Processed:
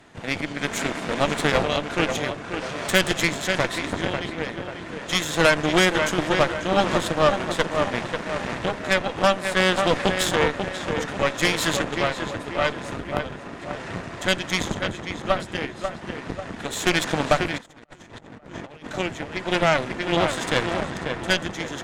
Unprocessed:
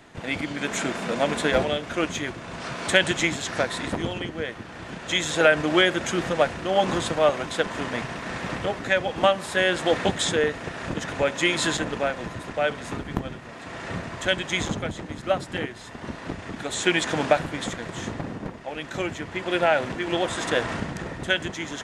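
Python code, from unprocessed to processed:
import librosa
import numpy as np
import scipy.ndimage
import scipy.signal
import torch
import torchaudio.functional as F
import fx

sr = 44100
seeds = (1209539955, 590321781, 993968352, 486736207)

y = fx.echo_tape(x, sr, ms=541, feedback_pct=53, wet_db=-5.0, lp_hz=2400.0, drive_db=4.0, wow_cents=6)
y = fx.cheby_harmonics(y, sr, harmonics=(3, 8), levels_db=(-27, -16), full_scale_db=-3.0)
y = fx.over_compress(y, sr, threshold_db=-40.0, ratio=-0.5, at=(17.58, 18.87))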